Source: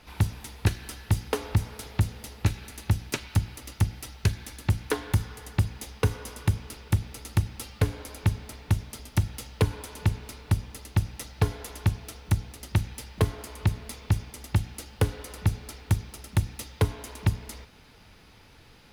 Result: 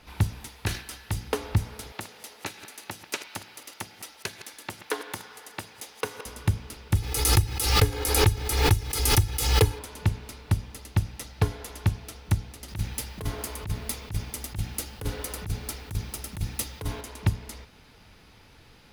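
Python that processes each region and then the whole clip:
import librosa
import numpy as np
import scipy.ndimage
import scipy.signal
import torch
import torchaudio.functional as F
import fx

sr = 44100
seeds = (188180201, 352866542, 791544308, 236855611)

y = fx.chain(x, sr, fx.low_shelf(hz=430.0, db=-8.0),
    fx.sustainer(db_per_s=130.0), at=(0.48, 1.14))
y = fx.chain(y, sr, fx.reverse_delay(ms=105, wet_db=-12.5),
    fx.highpass(hz=430.0, slope=12), at=(1.92, 6.26))
y = fx.chain(y, sr, fx.high_shelf(hz=7400.0, db=10.0),
    fx.comb(ms=2.4, depth=0.68),
    fx.pre_swell(db_per_s=52.0), at=(6.95, 9.79))
y = fx.chain(y, sr, fx.high_shelf(hz=11000.0, db=10.0),
    fx.over_compress(threshold_db=-29.0, ratio=-1.0), at=(12.68, 17.01))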